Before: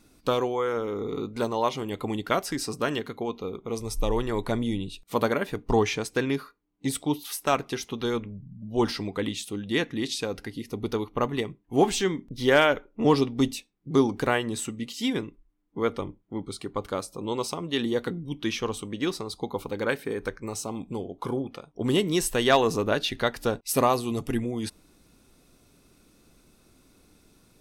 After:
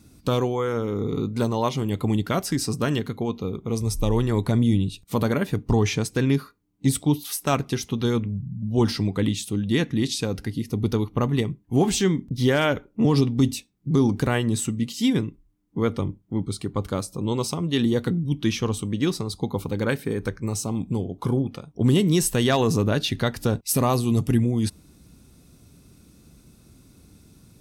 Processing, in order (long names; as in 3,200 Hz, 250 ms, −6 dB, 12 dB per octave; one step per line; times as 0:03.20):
high-pass filter 59 Hz
bass and treble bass +14 dB, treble +5 dB
brickwall limiter −9.5 dBFS, peak gain reduction 6.5 dB